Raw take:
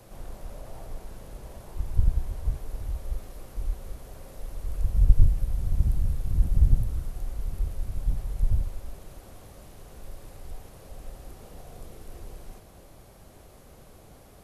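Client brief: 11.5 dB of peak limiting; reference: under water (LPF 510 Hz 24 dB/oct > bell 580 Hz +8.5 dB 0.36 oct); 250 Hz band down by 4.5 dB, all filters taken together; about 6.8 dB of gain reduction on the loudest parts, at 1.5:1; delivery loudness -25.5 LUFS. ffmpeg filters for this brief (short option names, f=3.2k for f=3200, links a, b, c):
-af "equalizer=f=250:t=o:g=-9,acompressor=threshold=-27dB:ratio=1.5,alimiter=limit=-21.5dB:level=0:latency=1,lowpass=f=510:w=0.5412,lowpass=f=510:w=1.3066,equalizer=f=580:t=o:w=0.36:g=8.5,volume=13dB"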